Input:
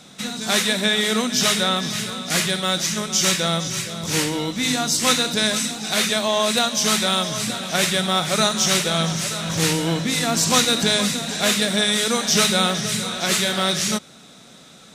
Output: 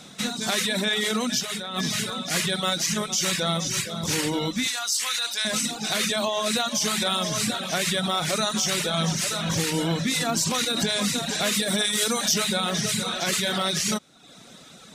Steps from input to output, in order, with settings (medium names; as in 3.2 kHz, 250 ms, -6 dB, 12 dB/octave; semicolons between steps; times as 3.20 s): peak limiter -14.5 dBFS, peak gain reduction 11.5 dB; reverb removal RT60 0.76 s; 1.40–1.83 s: compressor with a negative ratio -30 dBFS, ratio -0.5; 4.67–5.45 s: high-pass 1.2 kHz 12 dB/octave; 11.54–12.34 s: treble shelf 9.1 kHz +10 dB; trim +1 dB